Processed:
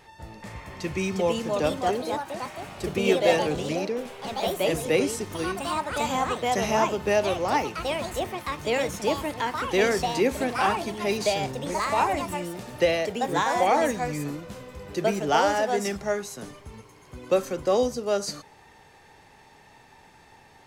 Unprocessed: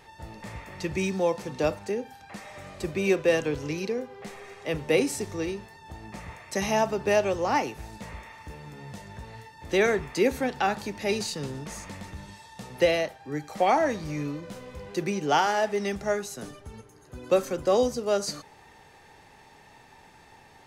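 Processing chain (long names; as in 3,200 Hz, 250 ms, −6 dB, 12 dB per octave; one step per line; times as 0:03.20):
delay with pitch and tempo change per echo 483 ms, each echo +3 semitones, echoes 3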